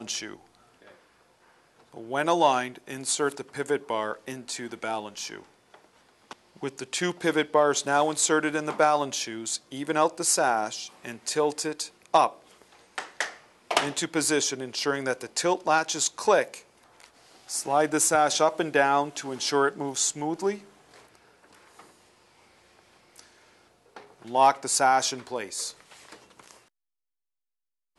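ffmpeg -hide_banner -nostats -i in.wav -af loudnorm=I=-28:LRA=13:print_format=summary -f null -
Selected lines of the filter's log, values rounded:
Input Integrated:    -26.2 LUFS
Input True Peak:      -8.5 dBTP
Input LRA:            10.6 LU
Input Threshold:     -38.0 LUFS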